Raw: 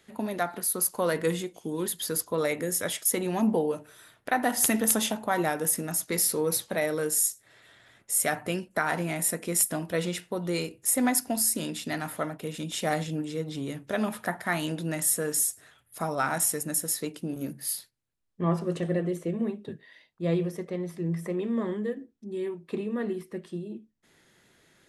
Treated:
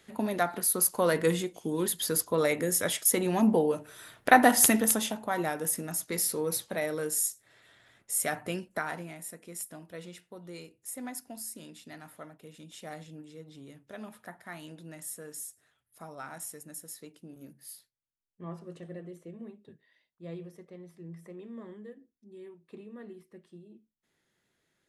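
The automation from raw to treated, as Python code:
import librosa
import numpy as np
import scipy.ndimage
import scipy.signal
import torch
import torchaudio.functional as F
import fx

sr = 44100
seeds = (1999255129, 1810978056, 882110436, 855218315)

y = fx.gain(x, sr, db=fx.line((3.77, 1.0), (4.34, 8.0), (5.04, -4.0), (8.72, -4.0), (9.21, -15.0)))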